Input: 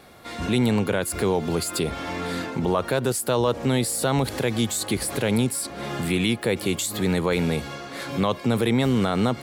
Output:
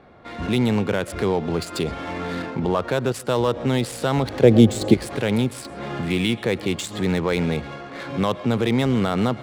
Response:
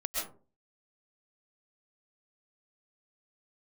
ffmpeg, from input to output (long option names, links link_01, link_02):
-filter_complex "[0:a]adynamicsmooth=sensitivity=5:basefreq=1800,asettb=1/sr,asplit=3[link_01][link_02][link_03];[link_01]atrim=end=4.424[link_04];[link_02]atrim=start=4.42:end=4.94,asetpts=PTS-STARTPTS,afade=type=in:duration=0.004:curve=qsin,afade=type=out:start_time=0.516:duration=0.004:curve=qsin,lowshelf=frequency=760:width_type=q:width=1.5:gain=10[link_05];[link_03]atrim=start=4.936[link_06];[link_04][link_05]acrossfade=duration=0.004:curve1=hsin:curve2=qsin[link_07];[link_07][link_06]acrossfade=duration=0.004:curve1=qsin:curve2=hsin,asplit=2[link_08][link_09];[1:a]atrim=start_sample=2205,atrim=end_sample=6174,lowpass=8300[link_10];[link_09][link_10]afir=irnorm=-1:irlink=0,volume=-18dB[link_11];[link_08][link_11]amix=inputs=2:normalize=0"